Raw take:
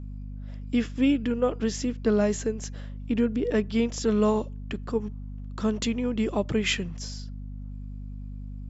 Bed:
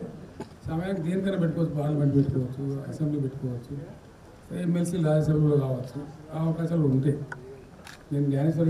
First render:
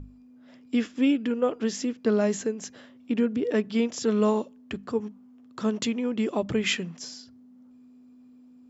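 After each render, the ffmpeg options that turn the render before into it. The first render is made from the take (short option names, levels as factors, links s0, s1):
-af "bandreject=f=50:t=h:w=6,bandreject=f=100:t=h:w=6,bandreject=f=150:t=h:w=6,bandreject=f=200:t=h:w=6"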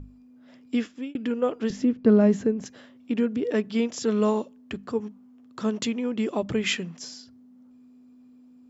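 -filter_complex "[0:a]asettb=1/sr,asplit=3[s0][s1][s2];[s0]atrim=end=1.704[s3];[s1]atrim=start=1.7:end=2.66,asetpts=PTS-STARTPTS,afade=t=in:d=0.004:c=qsin,afade=t=out:st=0.956:d=0.004:c=qsin,aemphasis=mode=reproduction:type=riaa[s4];[s2]atrim=start=2.656[s5];[s3][s4]acrossfade=d=0.004:c1=hsin:c2=qsin[s6];[s6][s5]acrossfade=d=0.004:c1=qsin:c2=hsin,asplit=2[s7][s8];[s7]atrim=end=1.15,asetpts=PTS-STARTPTS,afade=t=out:st=0.75:d=0.4[s9];[s8]atrim=start=1.15,asetpts=PTS-STARTPTS,afade=t=in:d=0.004:c=hsin[s10];[s9][s10]concat=n=2:v=0:a=1"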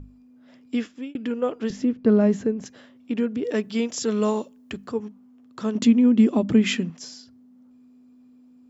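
-filter_complex "[0:a]asettb=1/sr,asplit=3[s0][s1][s2];[s0]atrim=end=3.444[s3];[s1]atrim=start=3.44:end=4.89,asetpts=PTS-STARTPTS,afade=t=in:d=0.004:c=qsin,afade=t=out:st=1.446:d=0.004:c=qsin,highshelf=f=5500:g=9[s4];[s2]atrim=start=4.886[s5];[s3][s4]acrossfade=d=0.004:c1=hsin:c2=qsin[s6];[s6][s5]acrossfade=d=0.004:c1=qsin:c2=hsin,asettb=1/sr,asplit=3[s7][s8][s9];[s7]atrim=end=5.754[s10];[s8]atrim=start=5.75:end=6.9,asetpts=PTS-STARTPTS,afade=t=in:d=0.004:c=qsin,afade=t=out:st=1.146:d=0.004:c=qsin,equalizer=f=240:t=o:w=0.77:g=13[s11];[s9]atrim=start=6.896[s12];[s10][s11]acrossfade=d=0.004:c1=hsin:c2=qsin[s13];[s13][s12]acrossfade=d=0.004:c1=qsin:c2=hsin"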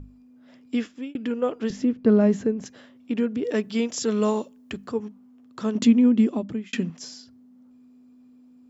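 -filter_complex "[0:a]asplit=2[s0][s1];[s0]atrim=end=6.73,asetpts=PTS-STARTPTS,afade=t=out:st=6.03:d=0.7[s2];[s1]atrim=start=6.73,asetpts=PTS-STARTPTS,afade=t=in:d=0.004:c=hsin[s3];[s2][s3]concat=n=2:v=0:a=1"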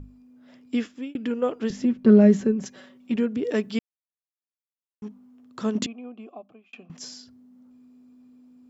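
-filter_complex "[0:a]asettb=1/sr,asplit=3[s0][s1][s2];[s0]atrim=end=1.834[s3];[s1]atrim=start=1.83:end=3.16,asetpts=PTS-STARTPTS,afade=t=in:d=0.004:c=qsin,afade=t=out:st=1.326:d=0.004:c=qsin,aecho=1:1:5.3:0.72,atrim=end_sample=58653[s4];[s2]atrim=start=3.156[s5];[s3][s4]acrossfade=d=0.004:c1=hsin:c2=qsin[s6];[s6][s5]acrossfade=d=0.004:c1=qsin:c2=hsin,asettb=1/sr,asplit=3[s7][s8][s9];[s7]atrim=end=5.864[s10];[s8]atrim=start=5.86:end=6.9,asetpts=PTS-STARTPTS,afade=t=in:d=0.004:c=qsin,afade=t=out:st=1.036:d=0.004:c=qsin,asplit=3[s11][s12][s13];[s11]bandpass=f=730:t=q:w=8,volume=1[s14];[s12]bandpass=f=1090:t=q:w=8,volume=0.501[s15];[s13]bandpass=f=2440:t=q:w=8,volume=0.355[s16];[s14][s15][s16]amix=inputs=3:normalize=0[s17];[s9]atrim=start=6.896[s18];[s10][s17]acrossfade=d=0.004:c1=hsin:c2=qsin[s19];[s19][s18]acrossfade=d=0.004:c1=qsin:c2=hsin,asplit=3[s20][s21][s22];[s20]atrim=end=3.79,asetpts=PTS-STARTPTS,afade=t=out:st=3.786:d=0.004:c=hsin[s23];[s21]atrim=start=3.79:end=5.02,asetpts=PTS-STARTPTS,volume=0[s24];[s22]atrim=start=5.02,asetpts=PTS-STARTPTS,afade=t=in:d=0.004:c=hsin[s25];[s23][s24][s25]concat=n=3:v=0:a=1"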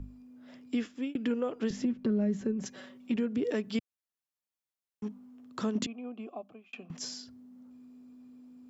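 -filter_complex "[0:a]acrossover=split=140[s0][s1];[s1]acompressor=threshold=0.0631:ratio=3[s2];[s0][s2]amix=inputs=2:normalize=0,alimiter=limit=0.0841:level=0:latency=1:release=381"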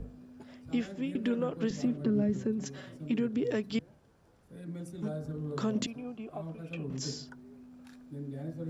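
-filter_complex "[1:a]volume=0.168[s0];[0:a][s0]amix=inputs=2:normalize=0"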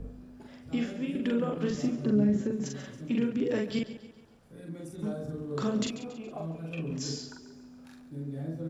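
-filter_complex "[0:a]asplit=2[s0][s1];[s1]adelay=43,volume=0.75[s2];[s0][s2]amix=inputs=2:normalize=0,aecho=1:1:139|278|417|556|695:0.211|0.101|0.0487|0.0234|0.0112"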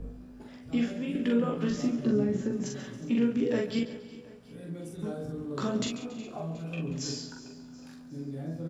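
-filter_complex "[0:a]asplit=2[s0][s1];[s1]adelay=17,volume=0.501[s2];[s0][s2]amix=inputs=2:normalize=0,aecho=1:1:364|728|1092|1456|1820:0.126|0.0692|0.0381|0.0209|0.0115"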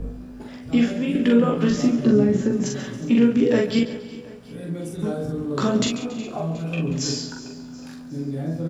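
-af "volume=2.99"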